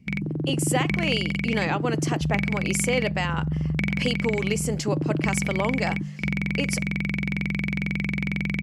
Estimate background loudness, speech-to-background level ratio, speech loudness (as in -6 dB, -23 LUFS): -27.0 LUFS, -1.5 dB, -28.5 LUFS